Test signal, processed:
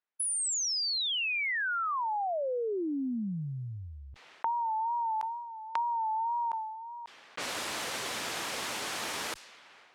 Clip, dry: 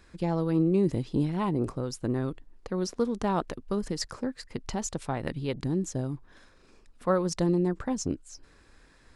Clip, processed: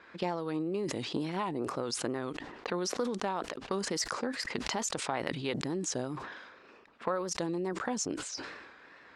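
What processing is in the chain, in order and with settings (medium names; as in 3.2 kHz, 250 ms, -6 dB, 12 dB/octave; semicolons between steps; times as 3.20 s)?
wow and flutter 73 cents; frequency weighting A; compression 12:1, threshold -38 dBFS; level-controlled noise filter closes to 2.1 kHz, open at -39 dBFS; decay stretcher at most 44 dB/s; trim +8 dB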